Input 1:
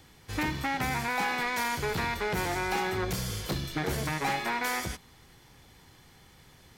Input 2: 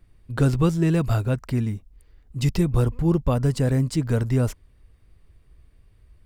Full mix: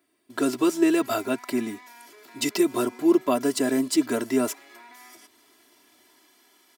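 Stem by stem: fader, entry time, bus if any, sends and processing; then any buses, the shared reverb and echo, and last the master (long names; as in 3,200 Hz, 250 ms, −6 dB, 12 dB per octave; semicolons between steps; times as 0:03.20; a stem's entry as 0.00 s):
−5.5 dB, 0.30 s, no send, downward compressor, threshold −38 dBFS, peak gain reduction 12 dB; brickwall limiter −37 dBFS, peak gain reduction 9.5 dB
−4.0 dB, 0.00 s, no send, automatic gain control gain up to 5.5 dB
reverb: not used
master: high-pass filter 240 Hz 24 dB per octave; high-shelf EQ 7,000 Hz +7.5 dB; comb filter 3 ms, depth 88%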